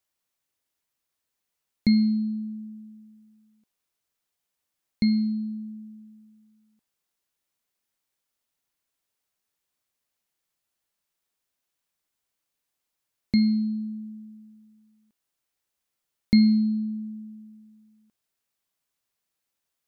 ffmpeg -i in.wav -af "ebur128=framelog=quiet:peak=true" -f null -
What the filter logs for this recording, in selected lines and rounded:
Integrated loudness:
  I:         -24.7 LUFS
  Threshold: -38.0 LUFS
Loudness range:
  LRA:         5.6 LU
  Threshold: -50.3 LUFS
  LRA low:   -33.1 LUFS
  LRA high:  -27.5 LUFS
True peak:
  Peak:       -8.9 dBFS